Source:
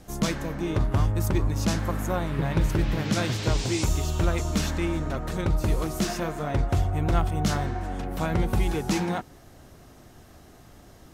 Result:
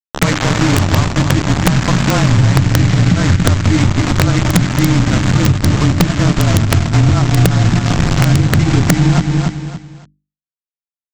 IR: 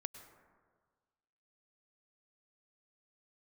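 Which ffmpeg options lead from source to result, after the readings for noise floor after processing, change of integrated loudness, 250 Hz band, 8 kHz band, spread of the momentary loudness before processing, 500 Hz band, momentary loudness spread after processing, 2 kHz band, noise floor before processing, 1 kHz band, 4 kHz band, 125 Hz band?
under -85 dBFS, +14.0 dB, +14.5 dB, +13.0 dB, 5 LU, +9.5 dB, 3 LU, +15.0 dB, -51 dBFS, +11.5 dB, +14.5 dB, +16.5 dB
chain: -filter_complex "[0:a]bandreject=f=410:w=12,afftfilt=real='re*between(b*sr/4096,110,2400)':imag='im*between(b*sr/4096,110,2400)':win_size=4096:overlap=0.75,afreqshift=-29,aresample=16000,acrusher=bits=4:mix=0:aa=0.000001,aresample=44100,asubboost=boost=5:cutoff=240,bandreject=f=50:t=h:w=6,bandreject=f=100:t=h:w=6,bandreject=f=150:t=h:w=6,bandreject=f=200:t=h:w=6,bandreject=f=250:t=h:w=6,bandreject=f=300:t=h:w=6,bandreject=f=350:t=h:w=6,asplit=2[s0][s1];[s1]aecho=0:1:282|564|846:0.282|0.0846|0.0254[s2];[s0][s2]amix=inputs=2:normalize=0,acompressor=threshold=0.0631:ratio=6,adynamicequalizer=threshold=0.00178:dfrequency=470:dqfactor=7.2:tfrequency=470:tqfactor=7.2:attack=5:release=100:ratio=0.375:range=3.5:mode=cutabove:tftype=bell,aeval=exprs='(mod(7.08*val(0)+1,2)-1)/7.08':c=same,aeval=exprs='0.141*(cos(1*acos(clip(val(0)/0.141,-1,1)))-cos(1*PI/2))+0.00708*(cos(6*acos(clip(val(0)/0.141,-1,1)))-cos(6*PI/2))':c=same,alimiter=level_in=7.94:limit=0.891:release=50:level=0:latency=1,volume=0.891"

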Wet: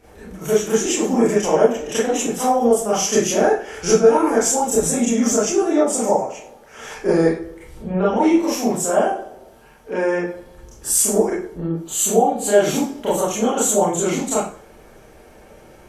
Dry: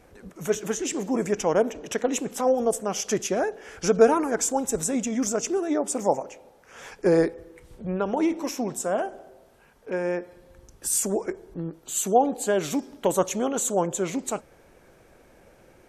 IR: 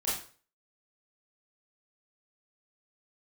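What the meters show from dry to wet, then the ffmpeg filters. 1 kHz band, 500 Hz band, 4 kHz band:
+7.0 dB, +7.0 dB, +8.5 dB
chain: -filter_complex "[0:a]alimiter=limit=0.188:level=0:latency=1:release=282[s0];[1:a]atrim=start_sample=2205[s1];[s0][s1]afir=irnorm=-1:irlink=0,volume=1.41"

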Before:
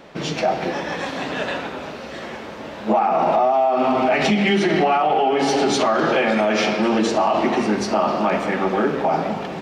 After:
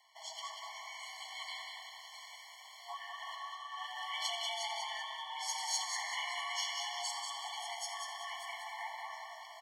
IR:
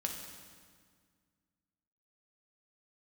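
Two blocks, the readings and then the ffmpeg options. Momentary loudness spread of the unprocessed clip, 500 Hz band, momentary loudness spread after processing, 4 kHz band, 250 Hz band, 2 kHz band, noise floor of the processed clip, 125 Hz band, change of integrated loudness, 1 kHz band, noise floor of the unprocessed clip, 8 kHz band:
12 LU, -34.5 dB, 12 LU, -9.5 dB, under -40 dB, -17.5 dB, -54 dBFS, under -40 dB, -20.5 dB, -22.0 dB, -34 dBFS, -6.0 dB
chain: -filter_complex "[0:a]acrossover=split=1600[s0][s1];[s1]dynaudnorm=f=370:g=9:m=1.58[s2];[s0][s2]amix=inputs=2:normalize=0,aecho=1:1:190|380|570|760|950:0.562|0.219|0.0855|0.0334|0.013,asplit=2[s3][s4];[1:a]atrim=start_sample=2205,adelay=85[s5];[s4][s5]afir=irnorm=-1:irlink=0,volume=0.266[s6];[s3][s6]amix=inputs=2:normalize=0,afreqshift=490,aderivative,afftfilt=real='re*eq(mod(floor(b*sr/1024/580),2),1)':imag='im*eq(mod(floor(b*sr/1024/580),2),1)':win_size=1024:overlap=0.75,volume=0.398"

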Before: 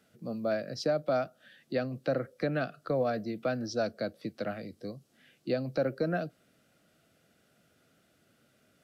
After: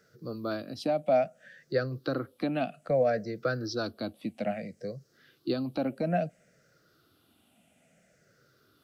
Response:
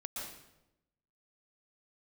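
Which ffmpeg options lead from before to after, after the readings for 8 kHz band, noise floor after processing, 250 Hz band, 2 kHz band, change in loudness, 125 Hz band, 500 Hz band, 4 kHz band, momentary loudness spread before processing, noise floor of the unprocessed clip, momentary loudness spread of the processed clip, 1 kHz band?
no reading, -68 dBFS, +2.0 dB, +0.5 dB, +1.5 dB, +1.5 dB, +1.5 dB, +1.5 dB, 11 LU, -69 dBFS, 12 LU, +3.0 dB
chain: -af "afftfilt=real='re*pow(10,13/40*sin(2*PI*(0.56*log(max(b,1)*sr/1024/100)/log(2)-(-0.6)*(pts-256)/sr)))':imag='im*pow(10,13/40*sin(2*PI*(0.56*log(max(b,1)*sr/1024/100)/log(2)-(-0.6)*(pts-256)/sr)))':win_size=1024:overlap=0.75"

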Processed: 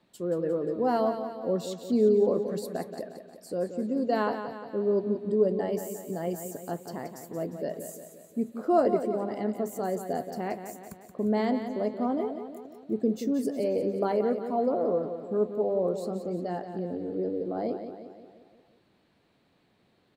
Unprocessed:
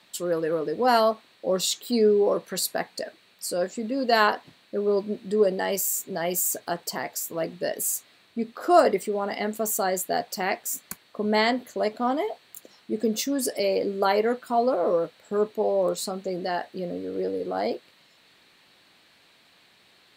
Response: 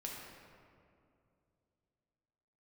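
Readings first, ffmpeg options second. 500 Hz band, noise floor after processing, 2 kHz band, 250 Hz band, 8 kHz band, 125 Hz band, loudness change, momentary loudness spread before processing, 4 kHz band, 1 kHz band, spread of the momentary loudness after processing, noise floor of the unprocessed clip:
-3.0 dB, -67 dBFS, -13.5 dB, +0.5 dB, -17.5 dB, +1.0 dB, -3.5 dB, 12 LU, -16.5 dB, -7.0 dB, 13 LU, -59 dBFS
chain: -af "tiltshelf=f=880:g=10,aecho=1:1:177|354|531|708|885|1062:0.355|0.192|0.103|0.0559|0.0302|0.0163,volume=0.376"

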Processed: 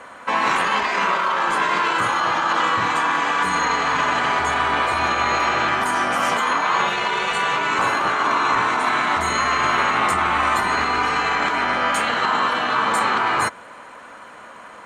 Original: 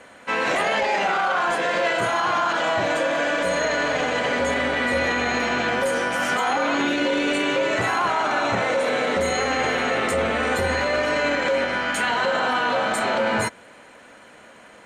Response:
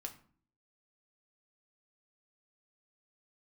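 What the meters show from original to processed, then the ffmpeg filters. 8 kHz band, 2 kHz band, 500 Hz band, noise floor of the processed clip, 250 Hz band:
+1.5 dB, +2.0 dB, -5.5 dB, -41 dBFS, -3.0 dB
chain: -af "afftfilt=real='re*lt(hypot(re,im),0.251)':imag='im*lt(hypot(re,im),0.251)':win_size=1024:overlap=0.75,equalizer=f=1100:t=o:w=0.82:g=12,volume=1.19"

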